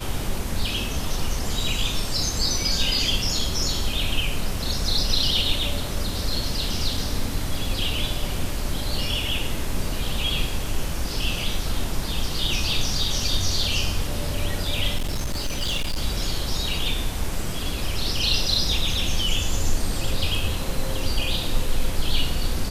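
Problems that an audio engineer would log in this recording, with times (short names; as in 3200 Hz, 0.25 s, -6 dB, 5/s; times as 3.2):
14.97–16.02 clipped -21 dBFS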